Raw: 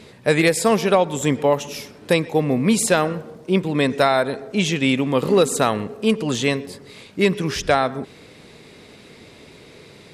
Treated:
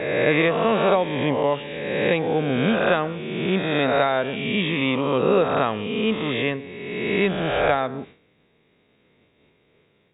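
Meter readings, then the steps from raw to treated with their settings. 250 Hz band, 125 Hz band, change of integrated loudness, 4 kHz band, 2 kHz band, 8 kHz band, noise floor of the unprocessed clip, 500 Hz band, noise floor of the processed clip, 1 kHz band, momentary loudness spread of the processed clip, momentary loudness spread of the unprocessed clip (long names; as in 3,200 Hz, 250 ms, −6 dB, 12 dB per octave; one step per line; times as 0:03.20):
−3.0 dB, −3.0 dB, −2.5 dB, −2.5 dB, 0.0 dB, below −40 dB, −46 dBFS, −1.5 dB, −63 dBFS, −1.5 dB, 8 LU, 11 LU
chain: peak hold with a rise ahead of every peak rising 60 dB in 1.59 s
downward expander −31 dBFS
linear-phase brick-wall low-pass 3,800 Hz
level −5.5 dB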